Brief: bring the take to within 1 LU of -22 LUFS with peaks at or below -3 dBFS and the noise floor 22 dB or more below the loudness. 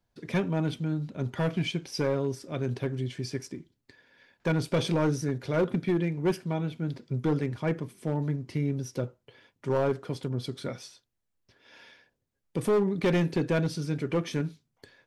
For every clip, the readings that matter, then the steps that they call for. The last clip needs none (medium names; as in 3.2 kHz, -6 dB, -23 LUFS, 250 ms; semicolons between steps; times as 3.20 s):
clipped samples 1.6%; clipping level -20.0 dBFS; loudness -30.0 LUFS; peak level -20.0 dBFS; loudness target -22.0 LUFS
-> clip repair -20 dBFS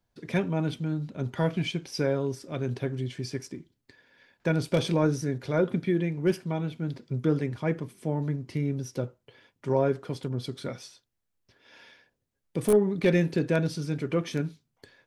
clipped samples 0.0%; loudness -29.0 LUFS; peak level -11.0 dBFS; loudness target -22.0 LUFS
-> trim +7 dB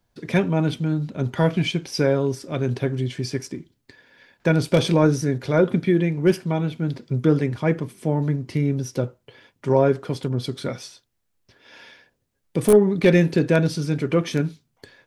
loudness -22.0 LUFS; peak level -4.0 dBFS; noise floor -72 dBFS